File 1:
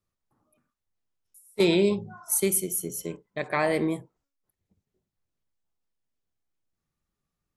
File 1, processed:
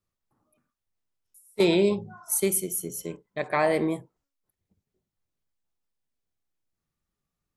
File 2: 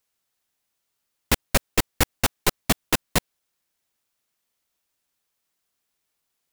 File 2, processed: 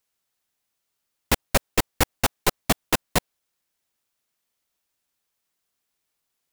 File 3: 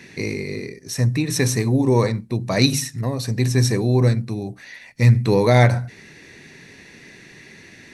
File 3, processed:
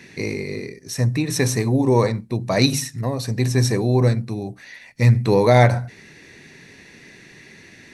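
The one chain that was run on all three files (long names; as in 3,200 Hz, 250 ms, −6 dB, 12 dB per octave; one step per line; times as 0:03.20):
dynamic equaliser 730 Hz, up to +4 dB, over −34 dBFS, Q 0.95
level −1 dB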